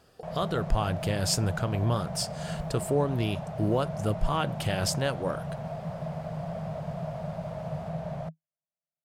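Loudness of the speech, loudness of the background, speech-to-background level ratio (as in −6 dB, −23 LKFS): −30.0 LKFS, −36.0 LKFS, 6.0 dB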